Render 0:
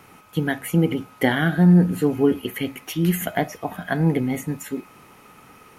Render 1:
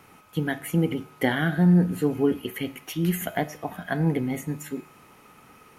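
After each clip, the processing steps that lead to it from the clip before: resonator 75 Hz, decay 0.95 s, harmonics all, mix 40%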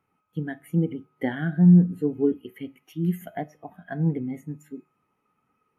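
spectral expander 1.5:1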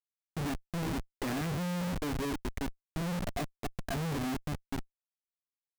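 Schmitt trigger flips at -37.5 dBFS; gain -8 dB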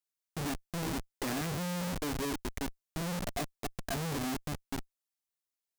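tone controls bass -3 dB, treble +5 dB

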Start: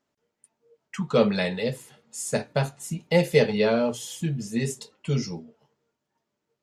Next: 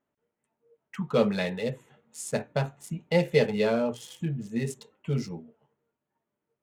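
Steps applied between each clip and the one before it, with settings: Wiener smoothing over 9 samples; gain -3 dB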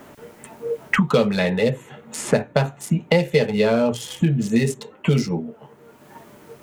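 three-band squash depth 100%; gain +8.5 dB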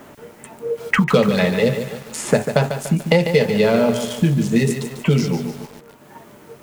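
lo-fi delay 0.146 s, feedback 55%, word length 6-bit, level -8 dB; gain +2 dB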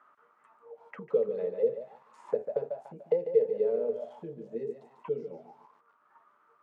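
auto-wah 460–1300 Hz, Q 8.7, down, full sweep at -13.5 dBFS; gain -5.5 dB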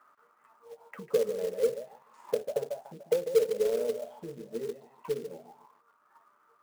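short-mantissa float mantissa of 2-bit

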